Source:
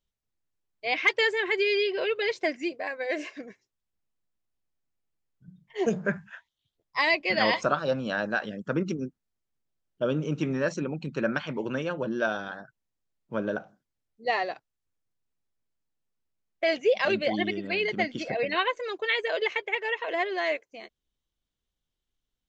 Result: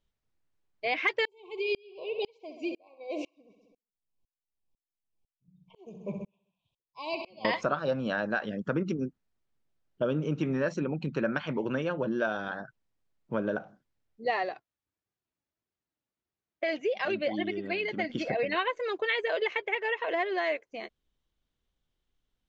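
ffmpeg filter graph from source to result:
ffmpeg -i in.wav -filter_complex "[0:a]asettb=1/sr,asplit=3[link_01][link_02][link_03];[link_01]atrim=end=1.254[link_04];[link_02]atrim=start=1.25:end=7.45,asetpts=PTS-STARTPTS,afade=type=in:duration=0.004:curve=qsin,afade=type=out:start_time=6.196:duration=0.004:curve=qsin,asuperstop=centerf=1600:order=20:qfactor=1.4,aecho=1:1:65|130|195|260|325|390:0.224|0.125|0.0702|0.0393|0.022|0.0123,atrim=end_sample=273420,aeval=exprs='val(0)*pow(10,-37*if(lt(mod(-2*n/s,1),2*abs(-2)/1000),1-mod(-2*n/s,1)/(2*abs(-2)/1000),(mod(-2*n/s,1)-2*abs(-2)/1000)/(1-2*abs(-2)/1000))/20)':channel_layout=same[link_05];[link_03]atrim=start=7.446[link_06];[link_04][link_05]acrossfade=duration=0.004:curve1=hsin:curve2=qsin[link_07];[link_07][link_06]acrossfade=duration=0.004:curve1=qsin:curve2=hsin,asettb=1/sr,asplit=3[link_08][link_09][link_10];[link_08]atrim=end=14.494[link_11];[link_09]atrim=start=14.49:end=18.1,asetpts=PTS-STARTPTS,afade=type=in:duration=0.004:curve=qsin,afade=type=out:start_time=3.606:duration=0.004:curve=qsin,highpass=67,flanger=delay=2.4:depth=1.2:regen=57:speed=1.6:shape=triangular[link_12];[link_10]atrim=start=18.096[link_13];[link_11][link_12]acrossfade=duration=0.004:curve1=hsin:curve2=qsin[link_14];[link_14][link_13]acrossfade=duration=0.004:curve1=qsin:curve2=hsin,aemphasis=mode=reproduction:type=50fm,acompressor=threshold=-35dB:ratio=2,volume=4.5dB" out.wav

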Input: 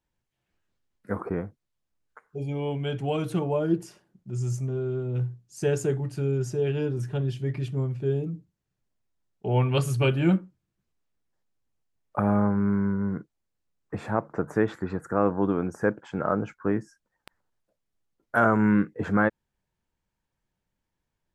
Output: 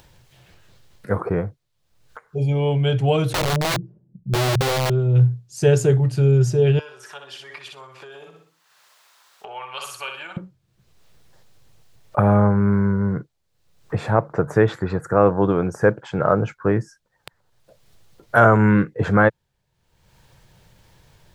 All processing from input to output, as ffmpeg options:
ffmpeg -i in.wav -filter_complex "[0:a]asettb=1/sr,asplit=3[link_01][link_02][link_03];[link_01]atrim=end=3.334[link_04];[link_02]atrim=start=3.33:end=4.9,asetpts=PTS-STARTPTS,afade=type=in:duration=0.004:curve=qsin,afade=type=out:start_time=1.566:duration=0.004:curve=qsin,lowpass=frequency=220:width_type=q:width=1.6,aeval=exprs='(mod(17.8*val(0)+1,2)-1)/17.8':channel_layout=same[link_05];[link_03]atrim=start=4.896[link_06];[link_04][link_05]acrossfade=duration=0.004:curve1=hsin:curve2=qsin[link_07];[link_07][link_06]acrossfade=duration=0.004:curve1=qsin:curve2=hsin,asettb=1/sr,asplit=3[link_08][link_09][link_10];[link_08]atrim=end=6.794[link_11];[link_09]atrim=start=6.79:end=10.37,asetpts=PTS-STARTPTS,afade=type=in:duration=0.004:curve=qsin,afade=type=out:start_time=3.576:duration=0.004:curve=qsin,aecho=1:1:62|124|186|248:0.473|0.161|0.0547|0.0186,atrim=end_sample=157878,acompressor=threshold=-30dB:ratio=6:attack=3.2:release=140:knee=1:detection=peak,highpass=frequency=1100:width_type=q:width=1.9[link_12];[link_10]atrim=start=10.366[link_13];[link_11][link_12]acrossfade=duration=0.004:curve1=hsin:curve2=qsin[link_14];[link_14][link_13]acrossfade=duration=0.004:curve1=qsin:curve2=hsin,equalizer=frequency=125:width_type=o:width=1:gain=8,equalizer=frequency=250:width_type=o:width=1:gain=-7,equalizer=frequency=500:width_type=o:width=1:gain=4,equalizer=frequency=4000:width_type=o:width=1:gain=5,acompressor=mode=upward:threshold=-42dB:ratio=2.5,volume=6.5dB" out.wav

